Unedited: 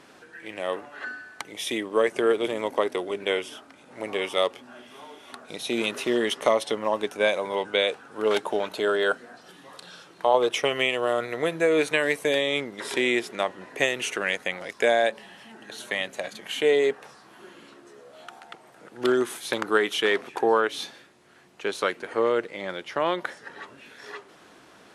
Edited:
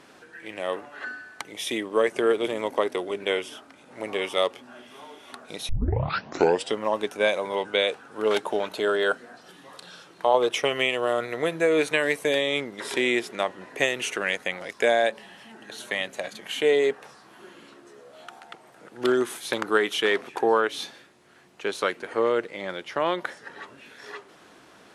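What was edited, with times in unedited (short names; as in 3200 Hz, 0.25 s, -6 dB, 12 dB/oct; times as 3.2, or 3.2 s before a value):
5.69 tape start 1.06 s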